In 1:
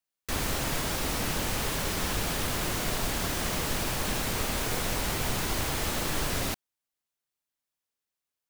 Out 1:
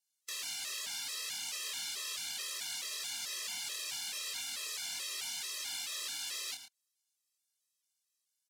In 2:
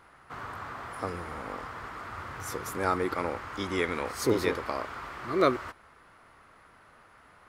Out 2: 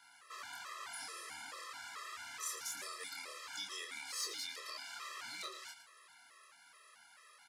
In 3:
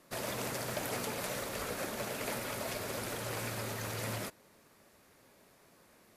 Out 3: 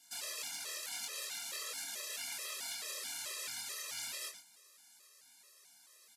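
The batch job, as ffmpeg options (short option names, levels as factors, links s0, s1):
-filter_complex "[0:a]lowpass=6000,acrossover=split=2100|4400[s0][s1][s2];[s0]acompressor=threshold=0.0112:ratio=4[s3];[s1]acompressor=threshold=0.00708:ratio=4[s4];[s2]acompressor=threshold=0.00141:ratio=4[s5];[s3][s4][s5]amix=inputs=3:normalize=0,aderivative,asplit=2[s6][s7];[s7]alimiter=level_in=8.91:limit=0.0631:level=0:latency=1:release=113,volume=0.112,volume=1.19[s8];[s6][s8]amix=inputs=2:normalize=0,asoftclip=type=tanh:threshold=0.02,acrossover=split=150|2000[s9][s10][s11];[s11]crystalizer=i=1.5:c=0[s12];[s9][s10][s12]amix=inputs=3:normalize=0,asplit=2[s13][s14];[s14]adelay=26,volume=0.631[s15];[s13][s15]amix=inputs=2:normalize=0,asplit=2[s16][s17];[s17]adelay=110.8,volume=0.355,highshelf=f=4000:g=-2.49[s18];[s16][s18]amix=inputs=2:normalize=0,afftfilt=real='re*gt(sin(2*PI*2.3*pts/sr)*(1-2*mod(floor(b*sr/1024/340),2)),0)':imag='im*gt(sin(2*PI*2.3*pts/sr)*(1-2*mod(floor(b*sr/1024/340),2)),0)':win_size=1024:overlap=0.75,volume=1.33"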